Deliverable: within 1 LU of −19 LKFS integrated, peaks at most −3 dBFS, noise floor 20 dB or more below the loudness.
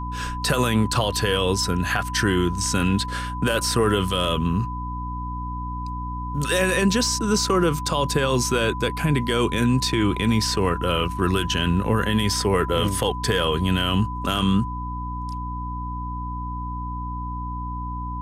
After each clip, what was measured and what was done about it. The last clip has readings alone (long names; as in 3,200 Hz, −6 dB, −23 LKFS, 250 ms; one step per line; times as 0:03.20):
mains hum 60 Hz; hum harmonics up to 300 Hz; level of the hum −29 dBFS; interfering tone 1,000 Hz; level of the tone −31 dBFS; integrated loudness −23.0 LKFS; sample peak −8.5 dBFS; target loudness −19.0 LKFS
→ mains-hum notches 60/120/180/240/300 Hz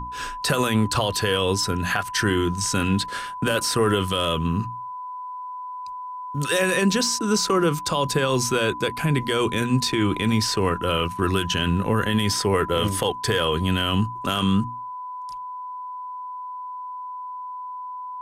mains hum none found; interfering tone 1,000 Hz; level of the tone −31 dBFS
→ notch filter 1,000 Hz, Q 30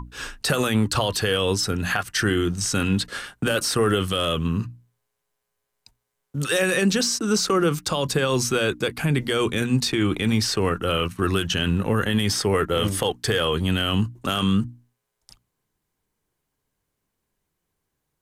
interfering tone none found; integrated loudness −22.5 LKFS; sample peak −9.5 dBFS; target loudness −19.0 LKFS
→ level +3.5 dB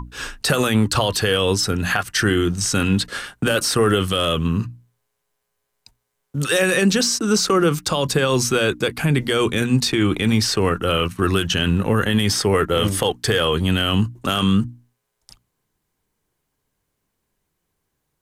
integrated loudness −19.0 LKFS; sample peak −6.0 dBFS; background noise floor −76 dBFS